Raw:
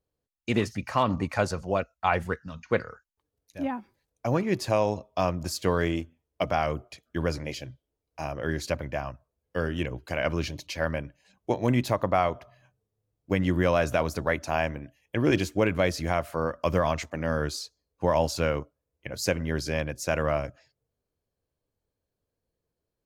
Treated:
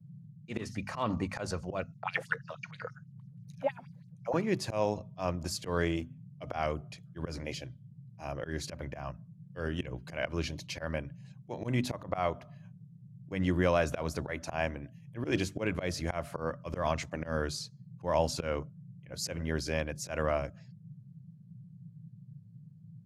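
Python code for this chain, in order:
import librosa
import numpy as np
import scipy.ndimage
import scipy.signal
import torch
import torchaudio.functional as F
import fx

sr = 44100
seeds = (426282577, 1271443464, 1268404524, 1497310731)

y = scipy.signal.sosfilt(scipy.signal.butter(4, 12000.0, 'lowpass', fs=sr, output='sos'), x)
y = fx.hum_notches(y, sr, base_hz=50, count=5)
y = fx.auto_swell(y, sr, attack_ms=122.0)
y = fx.filter_lfo_highpass(y, sr, shape='sine', hz=6.2, low_hz=470.0, high_hz=5700.0, q=4.2, at=(1.92, 4.34))
y = fx.dmg_noise_band(y, sr, seeds[0], low_hz=110.0, high_hz=180.0, level_db=-47.0)
y = F.gain(torch.from_numpy(y), -3.5).numpy()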